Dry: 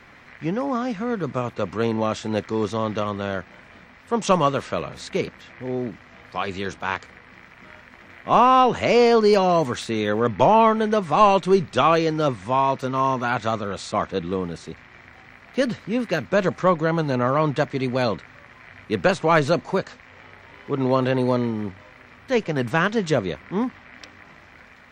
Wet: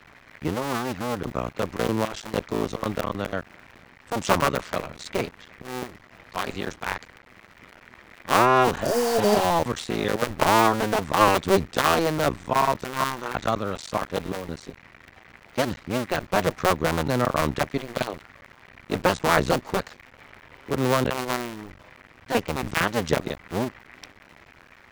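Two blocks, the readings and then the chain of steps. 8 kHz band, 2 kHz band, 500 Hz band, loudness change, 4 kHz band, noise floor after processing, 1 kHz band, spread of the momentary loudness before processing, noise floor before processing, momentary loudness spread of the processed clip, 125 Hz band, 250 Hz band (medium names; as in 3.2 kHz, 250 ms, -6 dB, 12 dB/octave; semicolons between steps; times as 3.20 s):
+5.5 dB, 0.0 dB, -4.0 dB, -3.0 dB, +0.5 dB, -53 dBFS, -3.0 dB, 13 LU, -49 dBFS, 13 LU, -3.0 dB, -4.0 dB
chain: cycle switcher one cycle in 2, muted; spectral replace 8.80–9.42 s, 690–4400 Hz both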